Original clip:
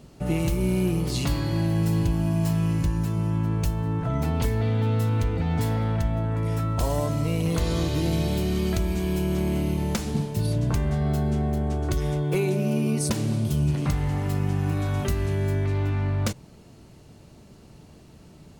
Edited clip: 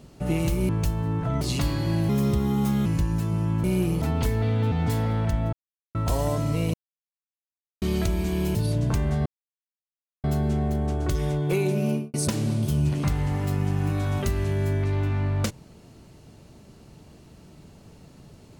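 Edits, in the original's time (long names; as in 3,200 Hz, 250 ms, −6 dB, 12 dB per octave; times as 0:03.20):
0:00.69–0:01.07: swap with 0:03.49–0:04.21
0:01.75–0:02.71: play speed 125%
0:04.91–0:05.43: remove
0:06.24–0:06.66: silence
0:07.45–0:08.53: silence
0:09.26–0:10.35: remove
0:11.06: splice in silence 0.98 s
0:12.71–0:12.96: fade out and dull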